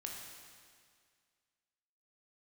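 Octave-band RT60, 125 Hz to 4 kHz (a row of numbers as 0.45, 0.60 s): 2.0, 2.0, 2.0, 2.0, 2.0, 2.0 s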